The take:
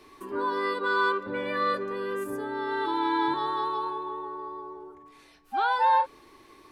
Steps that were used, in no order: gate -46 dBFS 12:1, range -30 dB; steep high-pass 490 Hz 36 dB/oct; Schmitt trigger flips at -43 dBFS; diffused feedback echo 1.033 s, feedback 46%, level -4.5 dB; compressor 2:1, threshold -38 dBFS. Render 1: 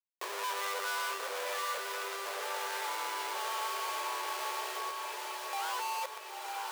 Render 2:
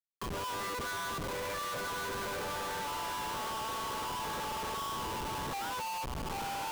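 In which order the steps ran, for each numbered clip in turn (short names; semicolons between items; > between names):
gate > Schmitt trigger > diffused feedback echo > compressor > steep high-pass; gate > diffused feedback echo > compressor > steep high-pass > Schmitt trigger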